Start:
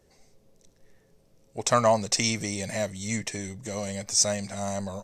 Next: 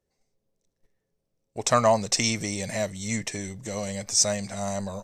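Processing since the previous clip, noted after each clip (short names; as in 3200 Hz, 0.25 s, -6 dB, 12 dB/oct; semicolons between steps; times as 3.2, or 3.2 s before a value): gate -50 dBFS, range -18 dB; gain +1 dB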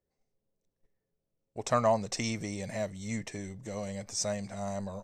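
high shelf 2400 Hz -8.5 dB; gain -5 dB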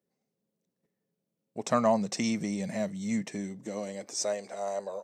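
high-pass sweep 190 Hz -> 450 Hz, 3.3–4.57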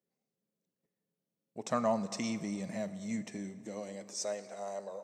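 plate-style reverb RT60 2.5 s, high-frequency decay 0.6×, DRR 13 dB; gain -6 dB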